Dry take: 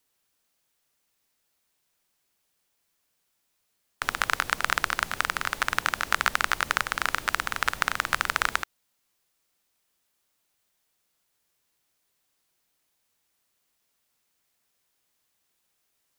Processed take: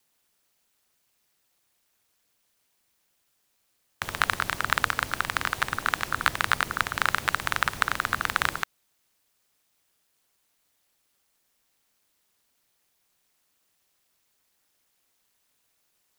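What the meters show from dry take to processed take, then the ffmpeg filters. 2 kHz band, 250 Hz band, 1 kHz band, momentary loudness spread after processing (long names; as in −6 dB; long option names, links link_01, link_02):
0.0 dB, +3.0 dB, +0.5 dB, 3 LU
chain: -af "acontrast=90,aeval=exprs='val(0)*sin(2*PI*100*n/s)':channel_layout=same,volume=-1.5dB"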